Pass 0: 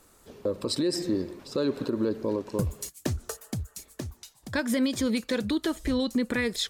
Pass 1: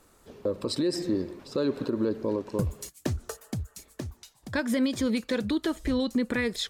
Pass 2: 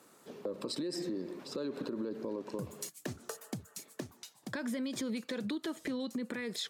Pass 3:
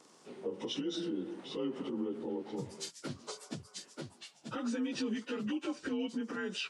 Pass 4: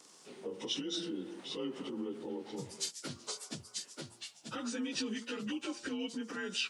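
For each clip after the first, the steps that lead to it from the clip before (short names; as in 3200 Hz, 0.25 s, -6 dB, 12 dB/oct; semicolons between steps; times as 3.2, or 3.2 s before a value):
high shelf 4600 Hz -5 dB
HPF 150 Hz 24 dB/oct; limiter -24 dBFS, peak gain reduction 8.5 dB; compressor 2.5:1, threshold -36 dBFS, peak gain reduction 6 dB
inharmonic rescaling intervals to 89%; gain +2.5 dB
high shelf 2300 Hz +10 dB; de-hum 116.3 Hz, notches 12; gain -3 dB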